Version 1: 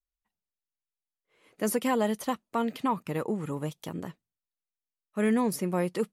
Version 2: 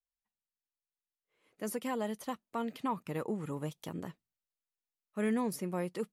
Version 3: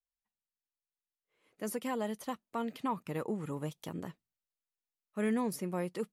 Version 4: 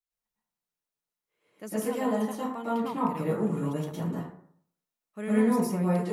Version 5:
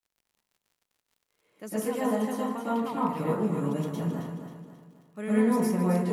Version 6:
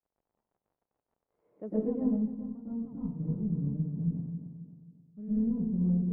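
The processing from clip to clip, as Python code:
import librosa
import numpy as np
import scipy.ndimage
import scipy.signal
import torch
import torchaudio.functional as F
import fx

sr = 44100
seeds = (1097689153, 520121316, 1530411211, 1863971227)

y1 = fx.rider(x, sr, range_db=4, speed_s=2.0)
y1 = y1 * librosa.db_to_amplitude(-7.5)
y2 = y1
y3 = fx.rev_plate(y2, sr, seeds[0], rt60_s=0.63, hf_ratio=0.45, predelay_ms=95, drr_db=-8.5)
y3 = y3 * librosa.db_to_amplitude(-3.5)
y4 = fx.dmg_crackle(y3, sr, seeds[1], per_s=65.0, level_db=-54.0)
y4 = fx.echo_feedback(y4, sr, ms=268, feedback_pct=42, wet_db=-8)
y5 = fx.cheby_harmonics(y4, sr, harmonics=(2,), levels_db=(-12,), full_scale_db=-12.0)
y5 = fx.filter_sweep_lowpass(y5, sr, from_hz=760.0, to_hz=150.0, start_s=1.45, end_s=2.37, q=1.2)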